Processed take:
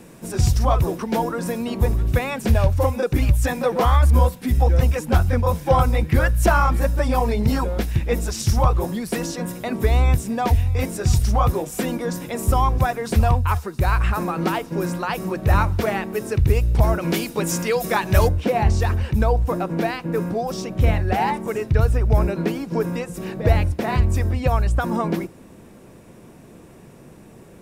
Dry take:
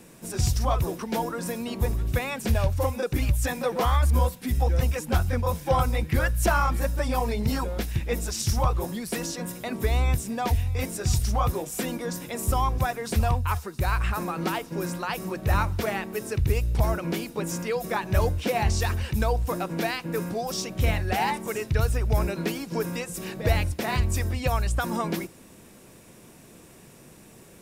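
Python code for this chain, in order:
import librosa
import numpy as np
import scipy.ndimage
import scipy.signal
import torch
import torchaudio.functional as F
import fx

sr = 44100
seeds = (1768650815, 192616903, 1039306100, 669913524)

y = fx.high_shelf(x, sr, hz=2100.0, db=fx.steps((0.0, -6.0), (17.0, 2.5), (18.27, -12.0)))
y = y * 10.0 ** (6.5 / 20.0)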